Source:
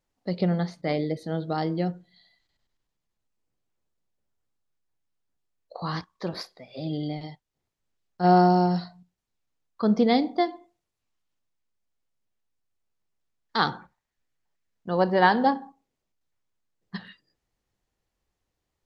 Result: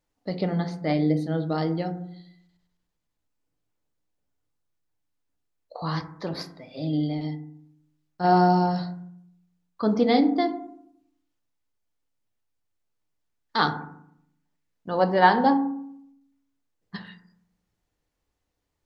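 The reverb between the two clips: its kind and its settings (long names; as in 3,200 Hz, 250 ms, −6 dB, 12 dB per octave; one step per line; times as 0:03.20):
feedback delay network reverb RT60 0.68 s, low-frequency decay 1.4×, high-frequency decay 0.3×, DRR 6.5 dB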